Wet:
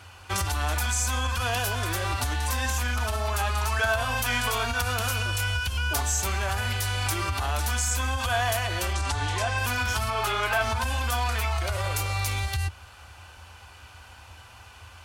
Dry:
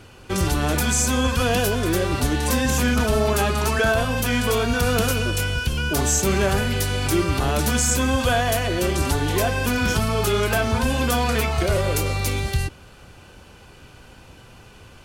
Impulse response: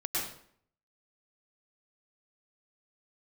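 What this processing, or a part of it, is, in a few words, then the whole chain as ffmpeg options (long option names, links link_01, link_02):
car stereo with a boomy subwoofer: -filter_complex "[0:a]asettb=1/sr,asplit=3[link_01][link_02][link_03];[link_01]atrim=end=10.104[link_04];[link_02]atrim=start=10.1:end=10.61,asetpts=PTS-STARTPTS,afade=type=in:duration=0.004:curve=qsin,afade=type=out:start_time=0.506:duration=0.004:curve=qsin,bass=frequency=250:gain=-6,treble=frequency=4000:gain=-8[link_05];[link_03]atrim=start=10.606[link_06];[link_04][link_05]acrossfade=duration=0.004:curve1=hsin:curve2=qsin[link_07];[link_07][link_06]acrossfade=duration=0.004:curve1=qsin:curve2=hsin,highpass=76,lowshelf=frequency=110:width_type=q:width=3:gain=9,alimiter=limit=-12.5dB:level=0:latency=1:release=102,lowshelf=frequency=600:width_type=q:width=1.5:gain=-9.5,asettb=1/sr,asplit=3[link_08][link_09][link_10];[link_08]atrim=end=8.934[link_11];[link_09]atrim=start=8.93:end=9.58,asetpts=PTS-STARTPTS,afade=type=in:duration=0.004:curve=qsin,afade=type=out:start_time=0.646:duration=0.004:curve=qsin,lowpass=frequency=9000:width=0.5412,lowpass=frequency=9000:width=1.3066[link_12];[link_10]atrim=start=9.576[link_13];[link_11][link_12]acrossfade=duration=0.004:curve1=hsin:curve2=qsin[link_14];[link_14][link_13]acrossfade=duration=0.004:curve1=qsin:curve2=hsin"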